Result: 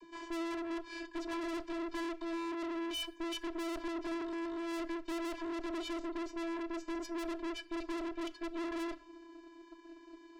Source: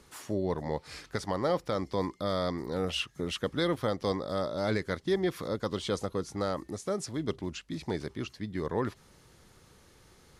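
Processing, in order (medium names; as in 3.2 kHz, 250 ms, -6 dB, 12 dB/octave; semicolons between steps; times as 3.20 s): median filter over 5 samples; vocoder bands 32, square 335 Hz; one-sided clip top -37 dBFS; valve stage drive 50 dB, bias 0.65; on a send: reverberation RT60 0.60 s, pre-delay 3 ms, DRR 14 dB; on the sum: trim +13.5 dB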